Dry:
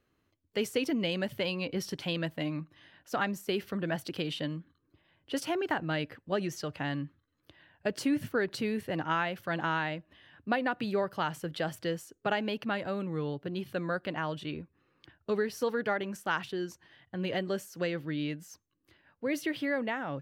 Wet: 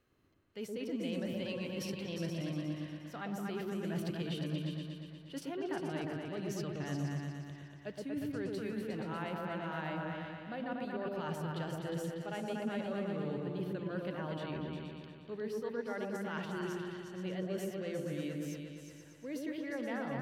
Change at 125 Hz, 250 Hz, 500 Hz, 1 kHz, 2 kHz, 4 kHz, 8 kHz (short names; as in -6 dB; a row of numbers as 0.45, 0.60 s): -1.5, -4.0, -6.0, -8.5, -10.0, -9.0, -6.5 dB